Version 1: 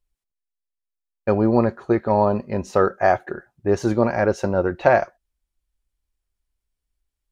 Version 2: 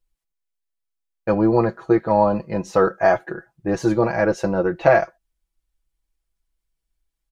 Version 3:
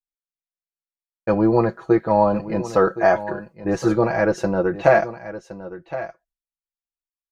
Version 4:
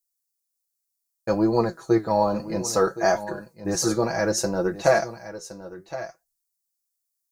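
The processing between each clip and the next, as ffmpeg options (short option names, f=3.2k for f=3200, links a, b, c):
-af "aecho=1:1:6.1:0.78,volume=-1dB"
-af "agate=range=-33dB:threshold=-46dB:ratio=3:detection=peak,aecho=1:1:1067:0.2"
-af "aexciter=amount=9.3:drive=3.9:freq=4.3k,flanger=delay=4.1:depth=9.7:regen=74:speed=0.63:shape=triangular"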